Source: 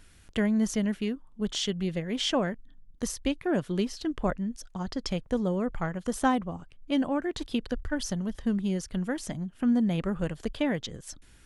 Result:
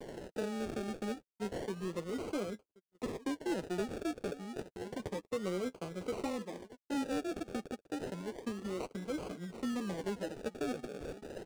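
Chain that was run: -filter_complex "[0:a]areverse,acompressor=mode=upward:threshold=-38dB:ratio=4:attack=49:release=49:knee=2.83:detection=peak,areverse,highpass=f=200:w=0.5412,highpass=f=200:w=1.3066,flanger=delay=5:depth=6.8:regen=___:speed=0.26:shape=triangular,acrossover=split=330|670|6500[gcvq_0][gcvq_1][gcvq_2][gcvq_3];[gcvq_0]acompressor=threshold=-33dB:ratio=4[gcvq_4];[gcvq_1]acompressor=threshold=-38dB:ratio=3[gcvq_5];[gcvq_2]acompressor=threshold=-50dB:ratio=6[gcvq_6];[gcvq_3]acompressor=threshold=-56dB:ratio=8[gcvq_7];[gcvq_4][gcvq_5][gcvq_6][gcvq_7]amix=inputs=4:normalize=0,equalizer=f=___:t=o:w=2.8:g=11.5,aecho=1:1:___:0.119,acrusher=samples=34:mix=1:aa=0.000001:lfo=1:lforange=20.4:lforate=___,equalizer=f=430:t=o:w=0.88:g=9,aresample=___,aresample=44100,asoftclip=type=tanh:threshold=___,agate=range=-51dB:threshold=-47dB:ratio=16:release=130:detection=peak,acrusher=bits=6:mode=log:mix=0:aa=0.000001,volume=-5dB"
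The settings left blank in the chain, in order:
29, 7500, 1071, 0.3, 22050, -22dB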